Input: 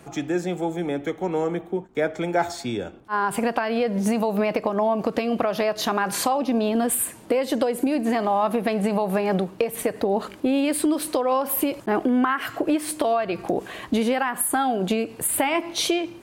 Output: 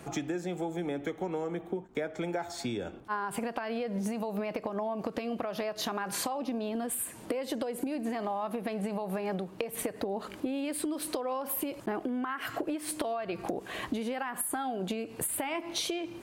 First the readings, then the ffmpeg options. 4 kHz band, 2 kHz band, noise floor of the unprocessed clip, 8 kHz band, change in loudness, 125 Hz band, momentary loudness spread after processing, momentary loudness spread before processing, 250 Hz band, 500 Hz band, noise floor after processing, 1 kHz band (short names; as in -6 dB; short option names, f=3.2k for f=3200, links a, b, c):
-8.5 dB, -10.5 dB, -44 dBFS, -8.5 dB, -10.5 dB, -9.0 dB, 3 LU, 5 LU, -10.5 dB, -11.0 dB, -48 dBFS, -11.5 dB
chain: -af "acompressor=threshold=-30dB:ratio=12"